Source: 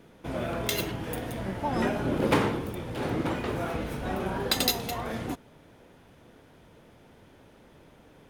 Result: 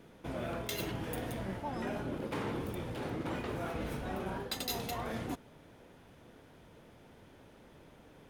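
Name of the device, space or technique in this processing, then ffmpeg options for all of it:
compression on the reversed sound: -af "areverse,acompressor=threshold=-31dB:ratio=12,areverse,volume=-2.5dB"

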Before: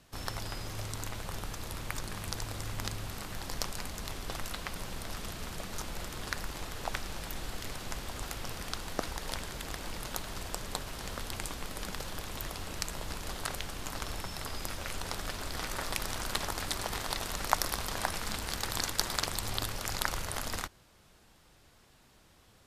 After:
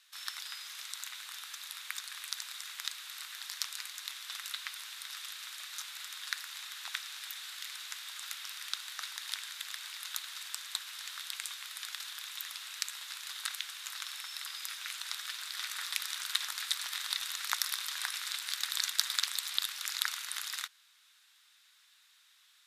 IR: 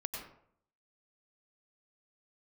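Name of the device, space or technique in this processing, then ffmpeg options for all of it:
headphones lying on a table: -af "highpass=frequency=1400:width=0.5412,highpass=frequency=1400:width=1.3066,equalizer=frequency=3700:width_type=o:width=0.24:gain=8"

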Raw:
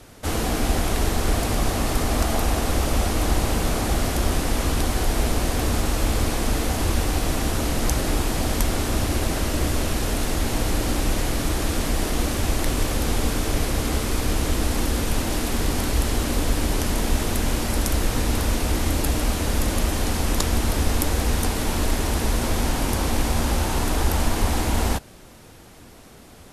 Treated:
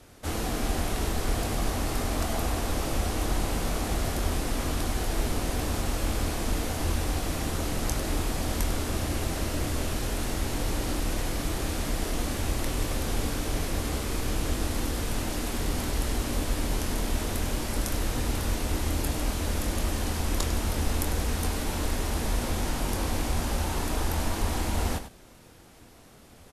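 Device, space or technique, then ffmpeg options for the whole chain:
slapback doubling: -filter_complex "[0:a]asplit=3[link_01][link_02][link_03];[link_02]adelay=24,volume=-8.5dB[link_04];[link_03]adelay=99,volume=-11dB[link_05];[link_01][link_04][link_05]amix=inputs=3:normalize=0,volume=-7dB"

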